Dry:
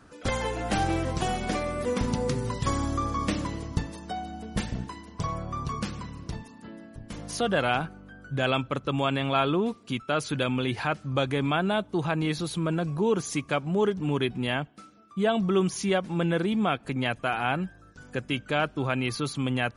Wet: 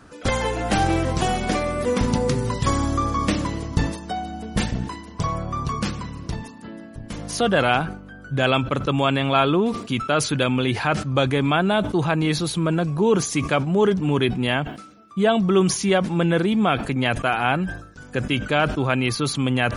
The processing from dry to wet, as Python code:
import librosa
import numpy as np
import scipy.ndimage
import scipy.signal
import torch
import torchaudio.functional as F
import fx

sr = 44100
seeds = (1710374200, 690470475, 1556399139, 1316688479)

y = fx.sustainer(x, sr, db_per_s=93.0)
y = F.gain(torch.from_numpy(y), 6.0).numpy()